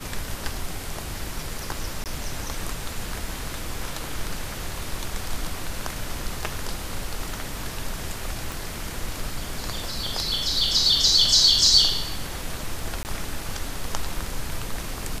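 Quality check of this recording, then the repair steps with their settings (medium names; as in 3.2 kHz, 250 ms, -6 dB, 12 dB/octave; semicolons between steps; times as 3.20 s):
2.04–2.06 s: dropout 18 ms
8.52 s: pop
13.03–13.05 s: dropout 19 ms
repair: de-click; interpolate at 2.04 s, 18 ms; interpolate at 13.03 s, 19 ms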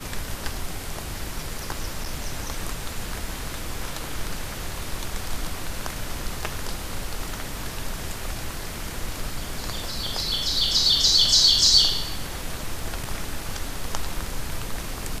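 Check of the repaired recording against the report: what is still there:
8.52 s: pop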